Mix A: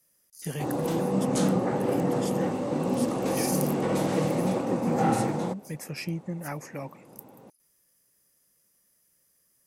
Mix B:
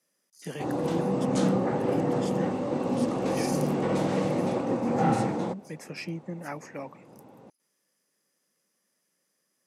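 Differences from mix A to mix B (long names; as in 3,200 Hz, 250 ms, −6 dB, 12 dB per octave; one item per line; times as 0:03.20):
speech: add high-pass filter 180 Hz 24 dB per octave
master: add high-frequency loss of the air 59 metres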